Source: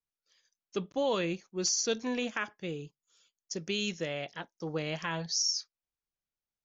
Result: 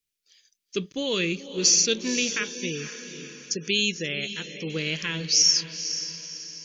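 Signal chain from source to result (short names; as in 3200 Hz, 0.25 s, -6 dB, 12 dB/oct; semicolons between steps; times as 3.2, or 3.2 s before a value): diffused feedback echo 0.498 s, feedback 45%, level -10.5 dB; 2.3–4.7 spectral gate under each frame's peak -30 dB strong; EQ curve 440 Hz 0 dB, 740 Hz -17 dB, 2400 Hz +6 dB; gain +5 dB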